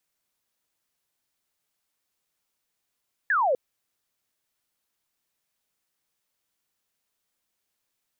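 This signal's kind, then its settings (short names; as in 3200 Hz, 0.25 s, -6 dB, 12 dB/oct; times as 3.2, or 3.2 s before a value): laser zap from 1800 Hz, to 480 Hz, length 0.25 s sine, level -19.5 dB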